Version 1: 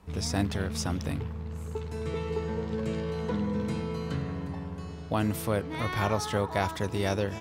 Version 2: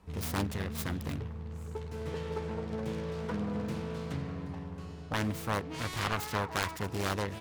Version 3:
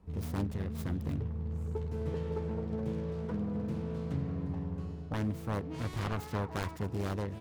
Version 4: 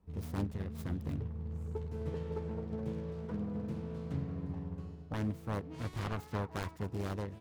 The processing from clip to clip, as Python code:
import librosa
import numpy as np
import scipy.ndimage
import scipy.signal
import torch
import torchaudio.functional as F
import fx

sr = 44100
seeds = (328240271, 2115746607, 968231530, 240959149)

y1 = fx.self_delay(x, sr, depth_ms=0.98)
y1 = y1 * librosa.db_to_amplitude(-4.0)
y2 = fx.tilt_shelf(y1, sr, db=6.5, hz=730.0)
y2 = fx.rider(y2, sr, range_db=3, speed_s=0.5)
y2 = y2 * librosa.db_to_amplitude(-4.0)
y3 = fx.upward_expand(y2, sr, threshold_db=-45.0, expansion=1.5)
y3 = y3 * librosa.db_to_amplitude(-1.0)